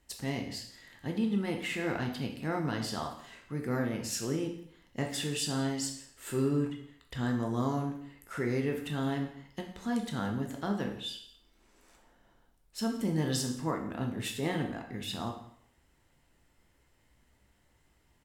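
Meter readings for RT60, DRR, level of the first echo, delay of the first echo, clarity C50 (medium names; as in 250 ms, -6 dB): 0.65 s, 2.0 dB, -20.5 dB, 173 ms, 7.0 dB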